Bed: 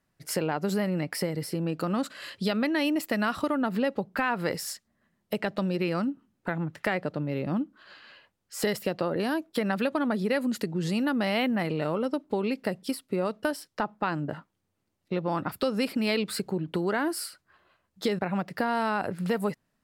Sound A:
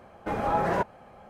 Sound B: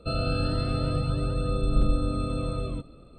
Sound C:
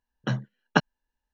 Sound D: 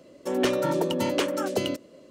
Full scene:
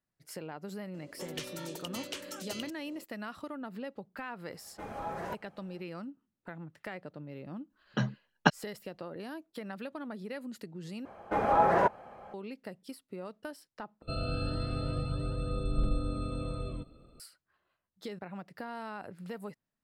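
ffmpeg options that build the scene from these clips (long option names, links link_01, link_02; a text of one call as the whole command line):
ffmpeg -i bed.wav -i cue0.wav -i cue1.wav -i cue2.wav -i cue3.wav -filter_complex "[1:a]asplit=2[link_01][link_02];[0:a]volume=-14dB[link_03];[4:a]acrossover=split=91|2200[link_04][link_05][link_06];[link_04]acompressor=threshold=-58dB:ratio=4[link_07];[link_05]acompressor=threshold=-43dB:ratio=4[link_08];[link_06]acompressor=threshold=-34dB:ratio=4[link_09];[link_07][link_08][link_09]amix=inputs=3:normalize=0[link_10];[link_01]highshelf=frequency=4300:gain=7[link_11];[3:a]aphaser=in_gain=1:out_gain=1:delay=5:decay=0.28:speed=1.5:type=sinusoidal[link_12];[link_02]equalizer=frequency=820:width=0.35:gain=8[link_13];[link_03]asplit=3[link_14][link_15][link_16];[link_14]atrim=end=11.054[link_17];[link_13]atrim=end=1.29,asetpts=PTS-STARTPTS,volume=-6dB[link_18];[link_15]atrim=start=12.336:end=14.024[link_19];[2:a]atrim=end=3.18,asetpts=PTS-STARTPTS,volume=-7dB[link_20];[link_16]atrim=start=17.196[link_21];[link_10]atrim=end=2.1,asetpts=PTS-STARTPTS,volume=-4dB,afade=type=in:duration=0.004:curve=hsin,afade=type=out:start_time=2.096:duration=0.004:curve=hsin,adelay=940[link_22];[link_11]atrim=end=1.29,asetpts=PTS-STARTPTS,volume=-13dB,afade=type=in:duration=0.004:curve=hsin,afade=type=out:start_time=1.286:duration=0.004:curve=hsin,adelay=4520[link_23];[link_12]atrim=end=1.33,asetpts=PTS-STARTPTS,volume=-3dB,afade=type=in:duration=0.004:curve=hsin,afade=type=out:start_time=1.326:duration=0.004:curve=hsin,adelay=339570S[link_24];[link_17][link_18]acrossfade=duration=0.004:curve1=hsin:curve2=hsin[link_25];[link_25][link_19]acrossfade=duration=0.004:curve1=hsin:curve2=hsin[link_26];[link_26][link_20]acrossfade=duration=0.004:curve1=hsin:curve2=hsin[link_27];[link_27][link_21]acrossfade=duration=0.004:curve1=hsin:curve2=hsin[link_28];[link_28][link_22][link_23][link_24]amix=inputs=4:normalize=0" out.wav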